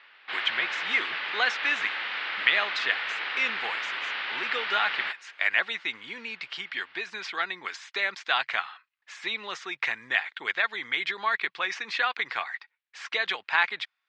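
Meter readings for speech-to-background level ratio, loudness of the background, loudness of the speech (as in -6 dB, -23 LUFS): 2.0 dB, -30.5 LUFS, -28.5 LUFS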